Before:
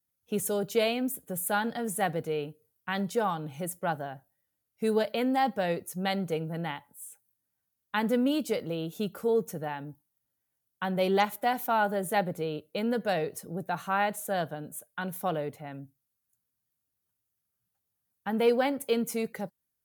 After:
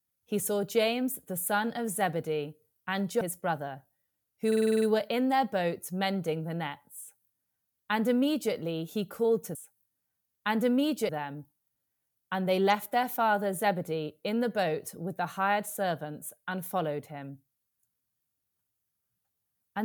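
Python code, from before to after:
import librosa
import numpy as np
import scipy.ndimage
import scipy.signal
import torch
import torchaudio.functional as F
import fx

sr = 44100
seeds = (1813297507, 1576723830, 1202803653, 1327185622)

y = fx.edit(x, sr, fx.cut(start_s=3.21, length_s=0.39),
    fx.stutter(start_s=4.86, slice_s=0.05, count=8),
    fx.duplicate(start_s=7.03, length_s=1.54, to_s=9.59), tone=tone)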